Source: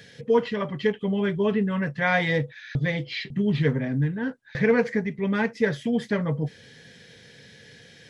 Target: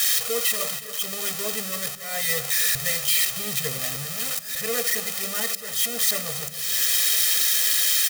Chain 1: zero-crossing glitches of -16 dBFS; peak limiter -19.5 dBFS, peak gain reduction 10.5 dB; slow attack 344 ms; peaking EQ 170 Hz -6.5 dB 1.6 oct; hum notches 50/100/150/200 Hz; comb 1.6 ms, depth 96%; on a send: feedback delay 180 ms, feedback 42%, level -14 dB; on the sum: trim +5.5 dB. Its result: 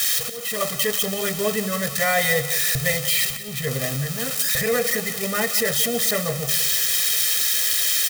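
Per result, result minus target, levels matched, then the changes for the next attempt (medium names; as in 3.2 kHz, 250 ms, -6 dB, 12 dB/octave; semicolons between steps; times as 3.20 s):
echo 105 ms early; zero-crossing glitches: distortion -11 dB
change: feedback delay 285 ms, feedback 42%, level -14 dB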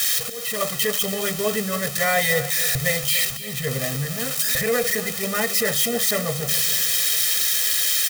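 zero-crossing glitches: distortion -11 dB
change: zero-crossing glitches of -5 dBFS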